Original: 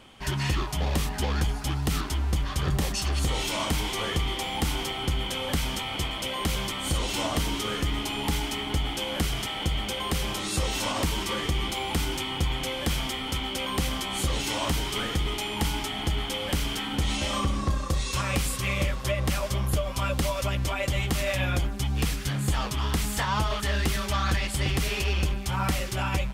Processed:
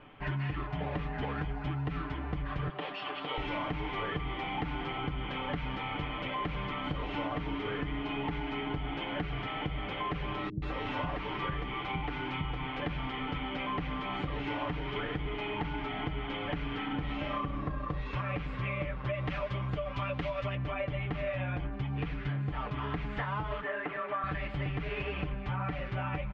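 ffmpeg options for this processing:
ffmpeg -i in.wav -filter_complex "[0:a]asettb=1/sr,asplit=3[link_01][link_02][link_03];[link_01]atrim=end=2.694[link_04];[link_02]atrim=start=2.69:end=3.38,asetpts=PTS-STARTPTS,afade=type=in:duration=0.004:curve=qsin,afade=type=out:start_time=0.686:duration=0.004:curve=qsin,highpass=440,equalizer=frequency=1800:width_type=q:width=4:gain=-4,equalizer=frequency=3200:width_type=q:width=4:gain=7,equalizer=frequency=6200:width_type=q:width=4:gain=-10,lowpass=frequency=6700:width=0.5412,lowpass=frequency=6700:width=1.3066[link_05];[link_03]atrim=start=3.376[link_06];[link_04][link_05]acrossfade=duration=0.004:curve1=hsin:curve2=qsin[link_07];[link_07][link_06]acrossfade=duration=0.004:curve1=qsin:curve2=hsin,asettb=1/sr,asplit=3[link_08][link_09][link_10];[link_08]atrim=end=10.494[link_11];[link_09]atrim=start=10.49:end=12.8,asetpts=PTS-STARTPTS,afade=type=in:duration=0.004:curve=qsin,afade=type=out:start_time=2.306:duration=0.004:curve=qsin,acrossover=split=290[link_12][link_13];[link_13]adelay=130[link_14];[link_12][link_14]amix=inputs=2:normalize=0,atrim=end_sample=101871[link_15];[link_10]atrim=start=12.796[link_16];[link_11][link_15]acrossfade=duration=0.004:curve1=hsin:curve2=qsin[link_17];[link_17][link_16]acrossfade=duration=0.004:curve1=qsin:curve2=hsin,asettb=1/sr,asplit=3[link_18][link_19][link_20];[link_18]atrim=end=19.134[link_21];[link_19]atrim=start=19.13:end=20.55,asetpts=PTS-STARTPTS,afade=type=in:duration=0.004:curve=qsin,afade=type=out:start_time=1.416:duration=0.004:curve=qsin,highshelf=frequency=2600:gain=10.5[link_22];[link_20]atrim=start=20.546[link_23];[link_21][link_22]acrossfade=duration=0.004:curve1=hsin:curve2=qsin[link_24];[link_24][link_23]acrossfade=duration=0.004:curve1=qsin:curve2=hsin,asettb=1/sr,asplit=3[link_25][link_26][link_27];[link_25]atrim=end=23.624[link_28];[link_26]atrim=start=23.62:end=24.24,asetpts=PTS-STARTPTS,afade=type=in:duration=0.004:curve=qsin,afade=type=out:start_time=0.616:duration=0.004:curve=qsin,highpass=380,lowpass=2000[link_29];[link_27]atrim=start=24.236[link_30];[link_28][link_29]acrossfade=duration=0.004:curve1=hsin:curve2=qsin[link_31];[link_31][link_30]acrossfade=duration=0.004:curve1=qsin:curve2=hsin,lowpass=frequency=2400:width=0.5412,lowpass=frequency=2400:width=1.3066,aecho=1:1:6.8:0.73,acompressor=threshold=-29dB:ratio=6,volume=-2dB" out.wav

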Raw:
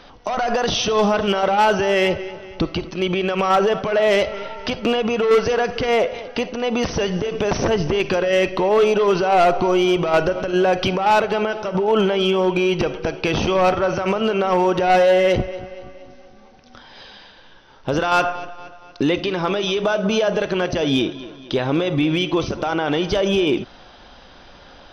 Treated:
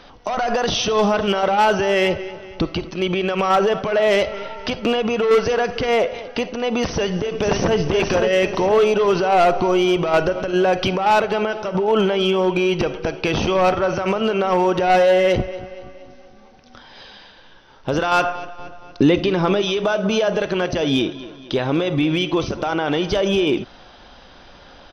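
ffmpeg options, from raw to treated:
ffmpeg -i in.wav -filter_complex "[0:a]asplit=2[link_01][link_02];[link_02]afade=type=in:start_time=6.91:duration=0.01,afade=type=out:start_time=7.77:duration=0.01,aecho=0:1:510|1020|1530|2040|2550|3060:0.630957|0.283931|0.127769|0.057496|0.0258732|0.0116429[link_03];[link_01][link_03]amix=inputs=2:normalize=0,asettb=1/sr,asplit=3[link_04][link_05][link_06];[link_04]atrim=end=18.594[link_07];[link_05]atrim=start=18.59:end=19.62,asetpts=PTS-STARTPTS,afade=type=in:duration=0.004:curve=qsin,afade=type=out:start_time=1.026:duration=0.004:curve=qsin,lowshelf=frequency=450:gain=7[link_08];[link_06]atrim=start=19.616[link_09];[link_07][link_08]acrossfade=duration=0.004:curve1=hsin:curve2=qsin[link_10];[link_10][link_09]acrossfade=duration=0.004:curve1=qsin:curve2=hsin" out.wav

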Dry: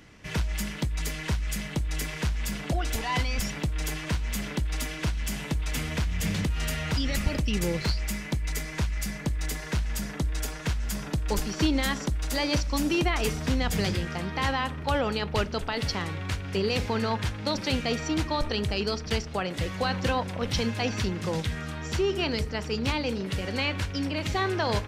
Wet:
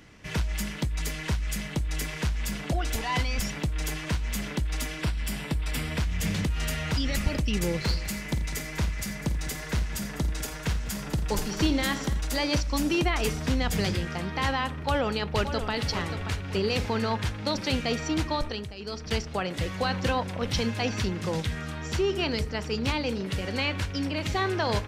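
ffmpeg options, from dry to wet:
ffmpeg -i in.wav -filter_complex "[0:a]asettb=1/sr,asplit=3[link_01][link_02][link_03];[link_01]atrim=end=5.014[link_04];[link_02]atrim=start=5.01:end=5.99,asetpts=PTS-STARTPTS,afade=type=in:duration=0.004:curve=qsin,afade=type=out:start_time=0.976:duration=0.004:curve=qsin,bandreject=frequency=6400:width=5[link_05];[link_03]atrim=start=5.986[link_06];[link_04][link_05]acrossfade=duration=0.004:curve1=hsin:curve2=qsin[link_07];[link_07][link_06]acrossfade=duration=0.004:curve1=qsin:curve2=hsin,asplit=3[link_08][link_09][link_10];[link_08]afade=type=out:start_time=7.87:duration=0.02[link_11];[link_09]aecho=1:1:50|85|200|272:0.224|0.158|0.168|0.1,afade=type=in:start_time=7.87:duration=0.02,afade=type=out:start_time=12.2:duration=0.02[link_12];[link_10]afade=type=in:start_time=12.2:duration=0.02[link_13];[link_11][link_12][link_13]amix=inputs=3:normalize=0,asplit=2[link_14][link_15];[link_15]afade=type=in:start_time=14.75:duration=0.01,afade=type=out:start_time=15.71:duration=0.01,aecho=0:1:580|1160|1740|2320:0.354813|0.124185|0.0434646|0.0152126[link_16];[link_14][link_16]amix=inputs=2:normalize=0,asplit=3[link_17][link_18][link_19];[link_17]atrim=end=18.73,asetpts=PTS-STARTPTS,afade=type=out:start_time=18.33:duration=0.4:silence=0.211349[link_20];[link_18]atrim=start=18.73:end=18.77,asetpts=PTS-STARTPTS,volume=-13.5dB[link_21];[link_19]atrim=start=18.77,asetpts=PTS-STARTPTS,afade=type=in:duration=0.4:silence=0.211349[link_22];[link_20][link_21][link_22]concat=n=3:v=0:a=1" out.wav

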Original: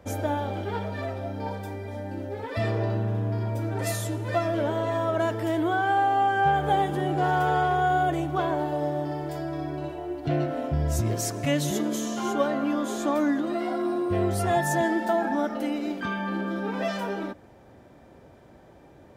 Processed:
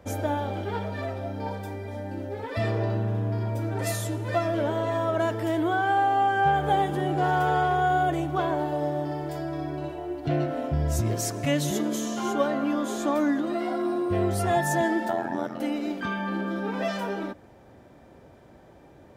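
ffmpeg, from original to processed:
ffmpeg -i in.wav -filter_complex "[0:a]asplit=3[link_01][link_02][link_03];[link_01]afade=type=out:start_time=15.08:duration=0.02[link_04];[link_02]tremolo=f=87:d=0.889,afade=type=in:start_time=15.08:duration=0.02,afade=type=out:start_time=15.59:duration=0.02[link_05];[link_03]afade=type=in:start_time=15.59:duration=0.02[link_06];[link_04][link_05][link_06]amix=inputs=3:normalize=0" out.wav

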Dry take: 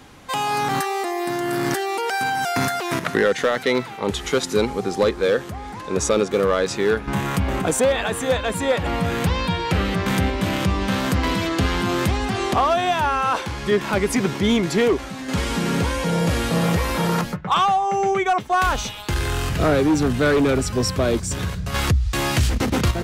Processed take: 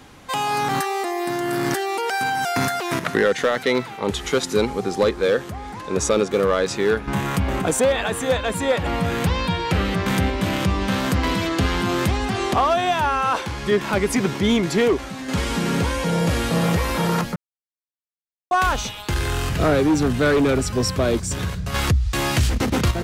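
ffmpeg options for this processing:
ffmpeg -i in.wav -filter_complex "[0:a]asplit=3[link_01][link_02][link_03];[link_01]atrim=end=17.36,asetpts=PTS-STARTPTS,afade=type=out:start_time=17.356:duration=0.004:curve=hsin[link_04];[link_02]atrim=start=17.36:end=18.51,asetpts=PTS-STARTPTS,volume=0[link_05];[link_03]atrim=start=18.51,asetpts=PTS-STARTPTS,afade=type=in:duration=0.004:curve=hsin[link_06];[link_04][link_05][link_06]concat=n=3:v=0:a=1" out.wav

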